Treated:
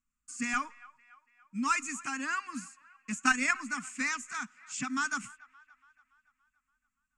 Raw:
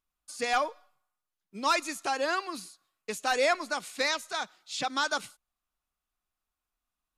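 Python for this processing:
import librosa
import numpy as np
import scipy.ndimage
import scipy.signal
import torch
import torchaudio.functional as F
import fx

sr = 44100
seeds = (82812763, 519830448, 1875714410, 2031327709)

y = fx.curve_eq(x, sr, hz=(170.0, 250.0, 390.0, 660.0, 1200.0, 2700.0, 3800.0, 7600.0, 13000.0), db=(0, 9, -29, -25, -2, -3, -21, 5, -27))
y = fx.transient(y, sr, attack_db=12, sustain_db=-5, at=(3.1, 3.51))
y = fx.echo_wet_bandpass(y, sr, ms=285, feedback_pct=54, hz=1500.0, wet_db=-21.0)
y = y * librosa.db_to_amplitude(1.5)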